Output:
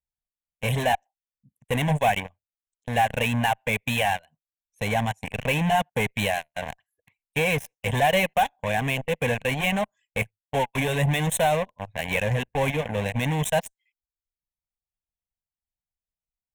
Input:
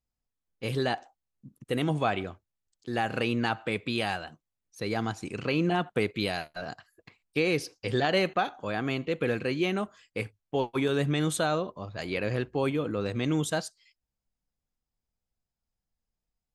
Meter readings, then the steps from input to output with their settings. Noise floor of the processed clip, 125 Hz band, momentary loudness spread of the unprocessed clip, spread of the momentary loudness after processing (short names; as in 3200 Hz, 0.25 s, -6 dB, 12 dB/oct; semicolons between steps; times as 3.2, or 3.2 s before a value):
under -85 dBFS, +6.0 dB, 10 LU, 8 LU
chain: reverb removal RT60 0.76 s; added harmonics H 3 -14 dB, 5 -43 dB, 6 -31 dB, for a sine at -11 dBFS; in parallel at -3 dB: fuzz box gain 38 dB, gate -43 dBFS; on the sum: fixed phaser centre 1300 Hz, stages 6